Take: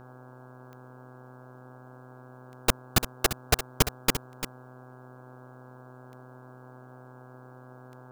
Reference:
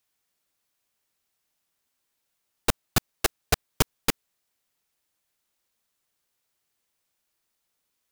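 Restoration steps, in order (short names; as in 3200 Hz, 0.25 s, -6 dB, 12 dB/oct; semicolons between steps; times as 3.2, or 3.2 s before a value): de-click; de-hum 126.9 Hz, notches 13; noise print and reduce 29 dB; inverse comb 0.345 s -11 dB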